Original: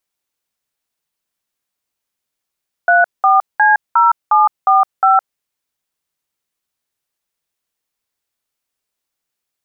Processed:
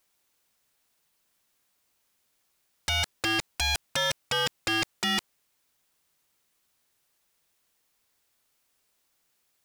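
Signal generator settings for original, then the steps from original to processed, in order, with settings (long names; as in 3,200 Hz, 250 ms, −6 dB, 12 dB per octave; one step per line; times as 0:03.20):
touch tones "34C0745", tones 163 ms, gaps 195 ms, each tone −10 dBFS
compressor whose output falls as the input rises −15 dBFS, ratio −0.5
wave folding −20.5 dBFS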